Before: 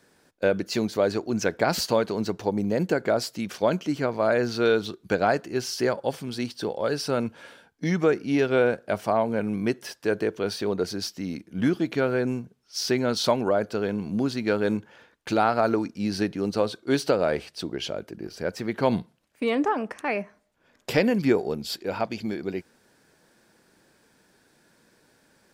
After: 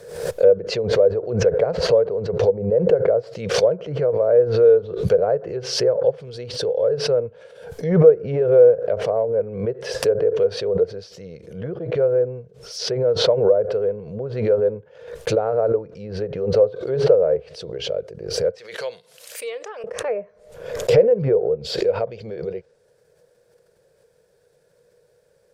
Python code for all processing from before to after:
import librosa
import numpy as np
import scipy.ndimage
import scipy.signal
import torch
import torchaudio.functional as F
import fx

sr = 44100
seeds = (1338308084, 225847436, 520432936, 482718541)

y = fx.chain(x, sr, fx.highpass(hz=930.0, slope=6),
    fx.tilt_shelf(db=-9.0, hz=1400.0), at=(18.58, 19.84))
y = fx.env_lowpass_down(y, sr, base_hz=1300.0, full_db=-21.5)
y = fx.curve_eq(y, sr, hz=(150.0, 280.0, 480.0, 810.0, 2300.0, 14000.0), db=(0, -22, 13, -8, -9, -4))
y = fx.pre_swell(y, sr, db_per_s=74.0)